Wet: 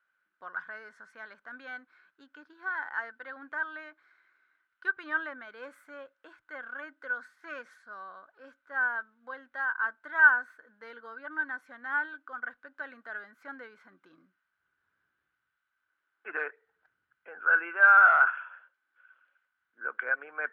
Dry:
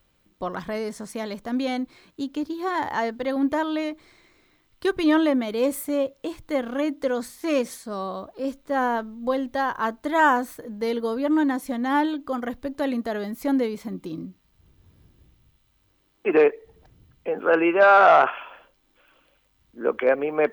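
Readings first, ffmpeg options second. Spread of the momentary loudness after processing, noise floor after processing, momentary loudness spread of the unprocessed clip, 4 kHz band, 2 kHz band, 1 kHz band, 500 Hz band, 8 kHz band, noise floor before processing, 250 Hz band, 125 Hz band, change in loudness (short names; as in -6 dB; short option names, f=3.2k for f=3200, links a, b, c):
24 LU, -82 dBFS, 13 LU, under -15 dB, +3.5 dB, -7.5 dB, -22.5 dB, under -25 dB, -66 dBFS, -29.0 dB, under -30 dB, -3.5 dB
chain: -af "bandpass=f=1.5k:t=q:w=14:csg=0,volume=8dB"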